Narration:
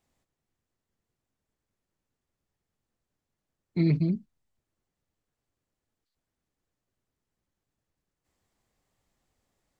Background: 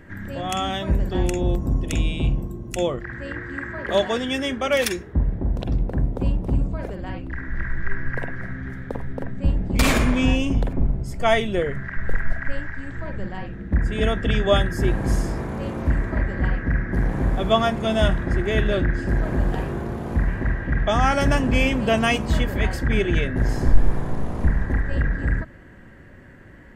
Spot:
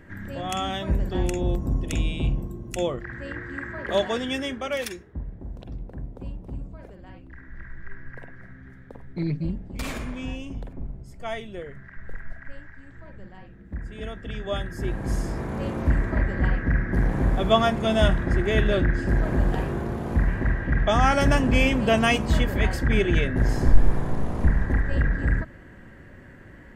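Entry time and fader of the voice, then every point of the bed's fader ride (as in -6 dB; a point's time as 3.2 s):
5.40 s, -3.5 dB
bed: 4.33 s -3 dB
5.23 s -13.5 dB
14.25 s -13.5 dB
15.61 s -0.5 dB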